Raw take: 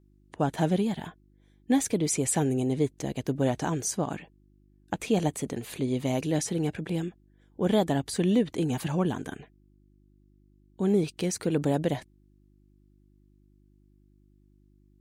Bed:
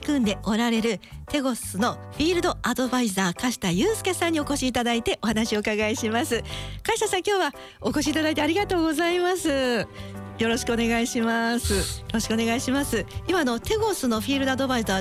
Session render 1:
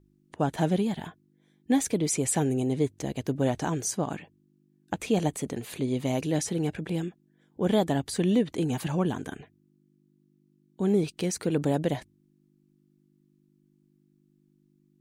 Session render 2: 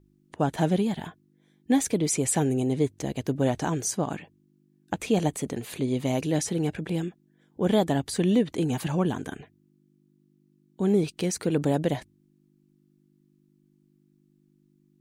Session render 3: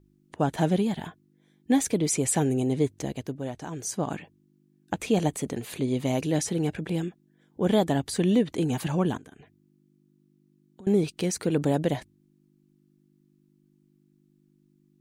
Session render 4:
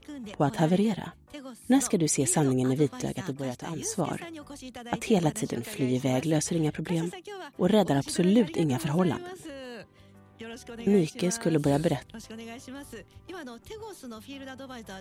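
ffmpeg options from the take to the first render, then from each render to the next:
-af "bandreject=f=50:t=h:w=4,bandreject=f=100:t=h:w=4"
-af "volume=1.5dB"
-filter_complex "[0:a]asettb=1/sr,asplit=3[a][b][c];[a]atrim=end=9.174[d];[b]atrim=start=9.17:end=10.87,asetpts=PTS-STARTPTS,afade=t=in:d=0.004:c=qsin,afade=t=out:st=1.696:d=0.004:c=qsin,acompressor=threshold=-46dB:ratio=5:attack=3.2:release=140:knee=1:detection=peak[e];[c]atrim=start=10.866[f];[d][e]acrossfade=d=0.004:c1=hsin:c2=qsin[g];[g][f]acrossfade=d=0.004:c1=qsin:c2=hsin,asplit=3[h][i][j];[h]atrim=end=3.39,asetpts=PTS-STARTPTS,afade=t=out:st=3:d=0.39:silence=0.334965[k];[i]atrim=start=3.39:end=3.7,asetpts=PTS-STARTPTS,volume=-9.5dB[l];[j]atrim=start=3.7,asetpts=PTS-STARTPTS,afade=t=in:d=0.39:silence=0.334965[m];[k][l][m]concat=n=3:v=0:a=1"
-filter_complex "[1:a]volume=-18dB[a];[0:a][a]amix=inputs=2:normalize=0"

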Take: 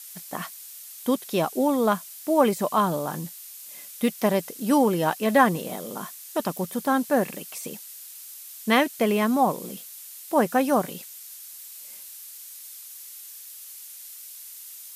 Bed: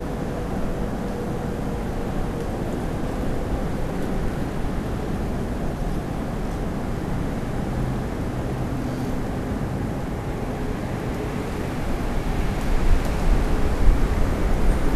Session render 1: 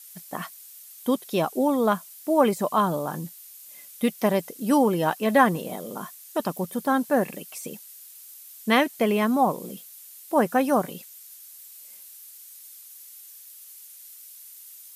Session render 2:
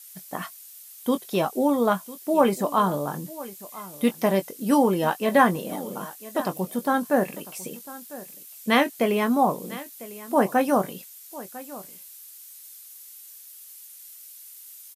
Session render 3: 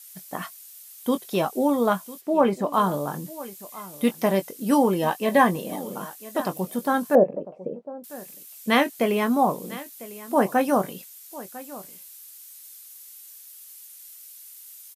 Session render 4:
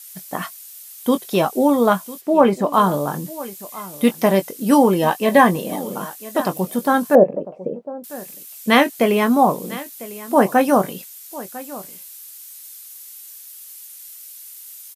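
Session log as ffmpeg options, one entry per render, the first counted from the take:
-af "afftdn=nr=6:nf=-43"
-filter_complex "[0:a]asplit=2[a][b];[b]adelay=21,volume=-9.5dB[c];[a][c]amix=inputs=2:normalize=0,aecho=1:1:1000:0.126"
-filter_complex "[0:a]asplit=3[a][b][c];[a]afade=t=out:st=2.2:d=0.02[d];[b]lowpass=f=2.4k:p=1,afade=t=in:st=2.2:d=0.02,afade=t=out:st=2.72:d=0.02[e];[c]afade=t=in:st=2.72:d=0.02[f];[d][e][f]amix=inputs=3:normalize=0,asettb=1/sr,asplit=3[g][h][i];[g]atrim=end=4.984[j];[h]atrim=start=4.98:end=5.8,asetpts=PTS-STARTPTS,afade=t=in:d=0.004:c=qsin,afade=t=out:st=0.816:d=0.004:c=qsin,asuperstop=centerf=1400:order=4:qfactor=6.7[k];[i]atrim=start=5.796[l];[j][k]acrossfade=d=0.004:c1=hsin:c2=qsin[m];[m][l]acrossfade=d=0.004:c1=qsin:c2=hsin,asettb=1/sr,asplit=3[n][o][p];[n]atrim=end=7.154[q];[o]atrim=start=7.15:end=8.04,asetpts=PTS-STARTPTS,afade=t=in:d=0.004:c=qsin,afade=t=out:st=0.886:d=0.004:c=qsin,lowpass=f=570:t=q:w=3.6[r];[p]atrim=start=8.036[s];[q][r]acrossfade=d=0.004:c1=hsin:c2=qsin[t];[t][s]acrossfade=d=0.004:c1=qsin:c2=hsin"
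-af "volume=6dB,alimiter=limit=-1dB:level=0:latency=1"

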